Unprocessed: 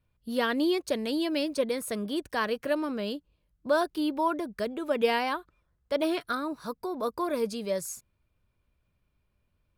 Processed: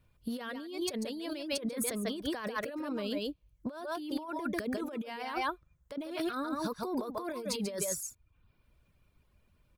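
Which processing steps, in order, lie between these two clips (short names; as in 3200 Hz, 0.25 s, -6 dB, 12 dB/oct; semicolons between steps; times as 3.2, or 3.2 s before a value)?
on a send: echo 0.142 s -6 dB; on the sum: reverb removal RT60 0.59 s; negative-ratio compressor -37 dBFS, ratio -1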